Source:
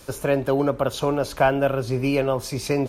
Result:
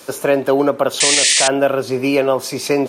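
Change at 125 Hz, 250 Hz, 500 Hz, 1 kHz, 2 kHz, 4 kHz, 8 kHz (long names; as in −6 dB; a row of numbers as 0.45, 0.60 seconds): −4.0, +4.5, +6.0, +4.0, +9.0, +17.5, +21.5 decibels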